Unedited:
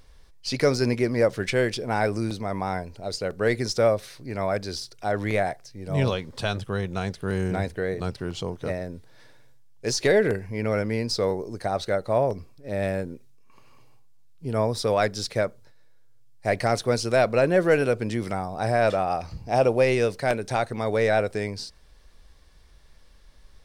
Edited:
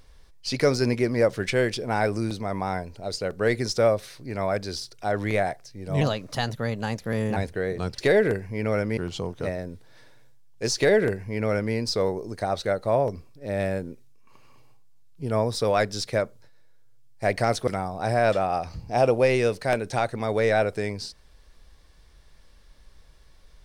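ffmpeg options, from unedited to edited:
-filter_complex "[0:a]asplit=6[a][b][c][d][e][f];[a]atrim=end=6.014[g];[b]atrim=start=6.01:end=7.58,asetpts=PTS-STARTPTS,asetrate=51156,aresample=44100,atrim=end_sample=59687,asetpts=PTS-STARTPTS[h];[c]atrim=start=7.576:end=8.202[i];[d]atrim=start=9.978:end=10.972[j];[e]atrim=start=8.198:end=16.902[k];[f]atrim=start=18.248[l];[g][h]acrossfade=d=0.004:c1=hsin:c2=hsin[m];[m][i]acrossfade=d=0.004:c1=hsin:c2=hsin[n];[n][j]acrossfade=d=0.004:c1=hsin:c2=hsin[o];[o][k]acrossfade=d=0.004:c1=hsin:c2=hsin[p];[p][l]acrossfade=d=0.004:c1=hsin:c2=hsin"

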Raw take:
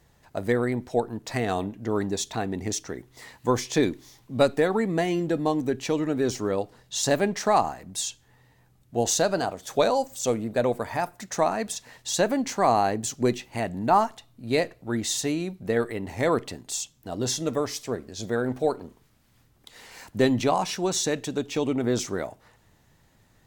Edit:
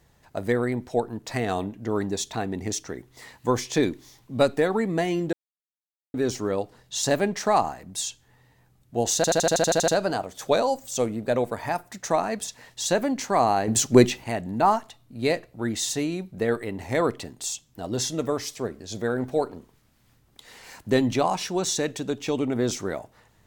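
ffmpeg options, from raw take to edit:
-filter_complex "[0:a]asplit=14[a][b][c][d][e][f][g][h][i][j][k][l][m][n];[a]atrim=end=5.33,asetpts=PTS-STARTPTS,afade=t=out:st=5.326:d=0.004:c=hsin[o];[b]atrim=start=5.33:end=6.14,asetpts=PTS-STARTPTS,volume=0[p];[c]atrim=start=6.14:end=9.242,asetpts=PTS-STARTPTS,afade=t=in:d=0.004:c=hsin[q];[d]atrim=start=9.158:end=9.242[r];[e]atrim=start=9.158:end=9.242[s];[f]atrim=start=9.158:end=9.242[t];[g]atrim=start=9.158:end=9.242[u];[h]atrim=start=9.158:end=9.242[v];[i]atrim=start=9.158:end=9.242[w];[j]atrim=start=9.158:end=9.242[x];[k]atrim=start=9.158:end=9.242[y];[l]atrim=start=9.158:end=12.962[z];[m]atrim=start=12.958:end=13.522,asetpts=PTS-STARTPTS,volume=8.5dB[aa];[n]atrim=start=13.518[ab];[o][p][q]concat=n=3:v=0:a=1[ac];[ac][r]acrossfade=d=0.004:c1=hsin:c2=hsin[ad];[ad][s]acrossfade=d=0.004:c1=hsin:c2=hsin[ae];[ae][t]acrossfade=d=0.004:c1=hsin:c2=hsin[af];[af][u]acrossfade=d=0.004:c1=hsin:c2=hsin[ag];[ag][v]acrossfade=d=0.004:c1=hsin:c2=hsin[ah];[ah][w]acrossfade=d=0.004:c1=hsin:c2=hsin[ai];[ai][x]acrossfade=d=0.004:c1=hsin:c2=hsin[aj];[aj][y]acrossfade=d=0.004:c1=hsin:c2=hsin[ak];[ak][z]acrossfade=d=0.004:c1=hsin:c2=hsin[al];[al][aa]acrossfade=d=0.004:c1=hsin:c2=hsin[am];[am][ab]acrossfade=d=0.004:c1=hsin:c2=hsin"

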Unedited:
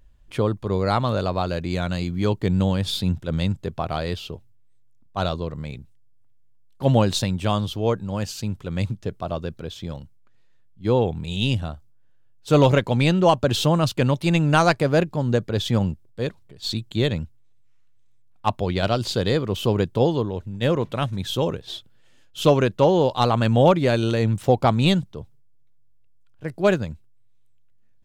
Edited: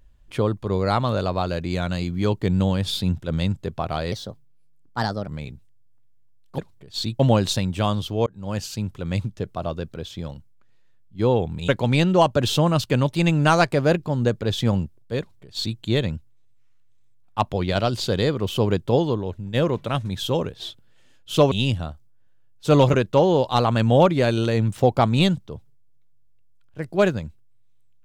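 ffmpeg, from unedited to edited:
-filter_complex "[0:a]asplit=9[a][b][c][d][e][f][g][h][i];[a]atrim=end=4.124[j];[b]atrim=start=4.12:end=5.54,asetpts=PTS-STARTPTS,asetrate=54243,aresample=44100,atrim=end_sample=50912,asetpts=PTS-STARTPTS[k];[c]atrim=start=5.536:end=6.852[l];[d]atrim=start=16.268:end=16.882[m];[e]atrim=start=6.848:end=7.92,asetpts=PTS-STARTPTS,afade=t=out:st=1.068:d=0.004:c=hsin[n];[f]atrim=start=7.92:end=11.342,asetpts=PTS-STARTPTS,afade=t=in:d=0.29[o];[g]atrim=start=12.758:end=22.592[p];[h]atrim=start=11.338:end=12.762[q];[i]atrim=start=22.588[r];[j][k]acrossfade=d=0.004:c1=hsin:c2=hsin[s];[s][l]acrossfade=d=0.004:c1=hsin:c2=hsin[t];[t][m]acrossfade=d=0.004:c1=hsin:c2=hsin[u];[n][o]concat=n=2:v=0:a=1[v];[u][v]acrossfade=d=0.004:c1=hsin:c2=hsin[w];[w][p]acrossfade=d=0.004:c1=hsin:c2=hsin[x];[x][q]acrossfade=d=0.004:c1=hsin:c2=hsin[y];[y][r]acrossfade=d=0.004:c1=hsin:c2=hsin"

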